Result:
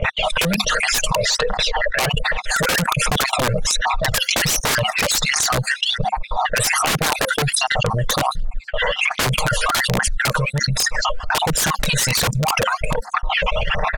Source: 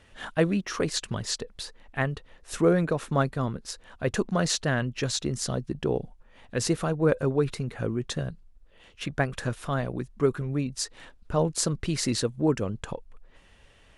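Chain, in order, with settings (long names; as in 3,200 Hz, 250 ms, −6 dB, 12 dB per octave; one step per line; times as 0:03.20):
time-frequency cells dropped at random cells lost 54%
comb filter 6.5 ms, depth 71%
noise gate −59 dBFS, range −30 dB
drawn EQ curve 210 Hz 0 dB, 310 Hz −21 dB, 530 Hz +12 dB, 5,100 Hz +5 dB
sine wavefolder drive 8 dB, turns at −7.5 dBFS
0:01.15–0:02.14: bass and treble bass −11 dB, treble −8 dB
phase shifter 1.3 Hz, delay 2.1 ms, feedback 64%
wrap-around overflow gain 6 dB
low-pass that shuts in the quiet parts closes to 1,800 Hz, open at −13 dBFS
amplitude tremolo 3.1 Hz, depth 62%
boost into a limiter +9 dB
envelope flattener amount 100%
level −13.5 dB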